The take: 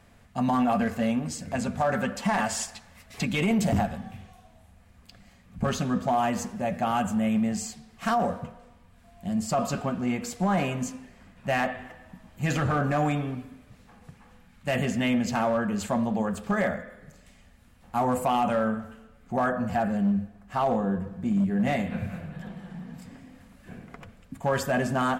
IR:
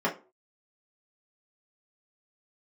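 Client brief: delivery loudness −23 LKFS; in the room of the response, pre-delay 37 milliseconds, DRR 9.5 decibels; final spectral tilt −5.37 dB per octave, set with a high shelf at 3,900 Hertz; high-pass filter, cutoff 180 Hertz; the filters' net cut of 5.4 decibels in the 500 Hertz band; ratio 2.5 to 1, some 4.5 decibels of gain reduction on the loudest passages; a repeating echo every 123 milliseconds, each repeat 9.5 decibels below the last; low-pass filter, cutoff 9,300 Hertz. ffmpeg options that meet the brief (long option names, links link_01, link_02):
-filter_complex "[0:a]highpass=180,lowpass=9300,equalizer=frequency=500:width_type=o:gain=-7,highshelf=frequency=3900:gain=-4.5,acompressor=threshold=-30dB:ratio=2.5,aecho=1:1:123|246|369|492:0.335|0.111|0.0365|0.012,asplit=2[link_01][link_02];[1:a]atrim=start_sample=2205,adelay=37[link_03];[link_02][link_03]afir=irnorm=-1:irlink=0,volume=-21dB[link_04];[link_01][link_04]amix=inputs=2:normalize=0,volume=10dB"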